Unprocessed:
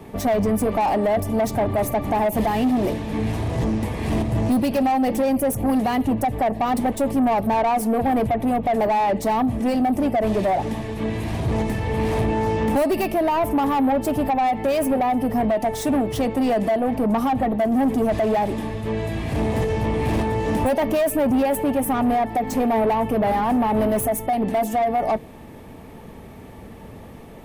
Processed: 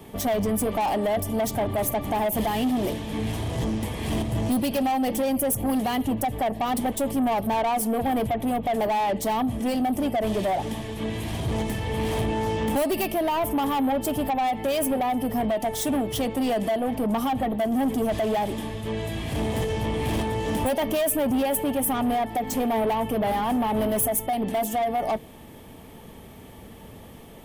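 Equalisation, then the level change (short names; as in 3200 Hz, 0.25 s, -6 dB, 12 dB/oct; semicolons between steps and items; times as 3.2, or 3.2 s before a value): bell 3200 Hz +8.5 dB 0.22 oct; high shelf 5500 Hz +10 dB; -4.5 dB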